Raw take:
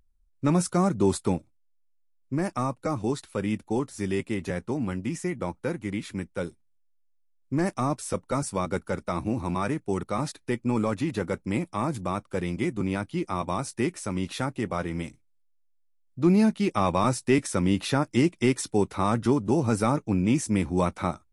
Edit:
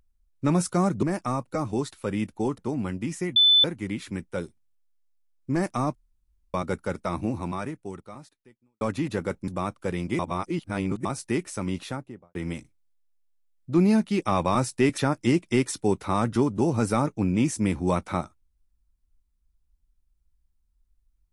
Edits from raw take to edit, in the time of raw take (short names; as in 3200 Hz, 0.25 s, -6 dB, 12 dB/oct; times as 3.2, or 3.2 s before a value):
1.03–2.34 cut
3.89–4.61 cut
5.39–5.67 bleep 3510 Hz -14 dBFS
7.98–8.57 room tone
9.3–10.84 fade out quadratic
11.51–11.97 cut
12.68–13.54 reverse
14.17–14.84 studio fade out
17.47–17.88 cut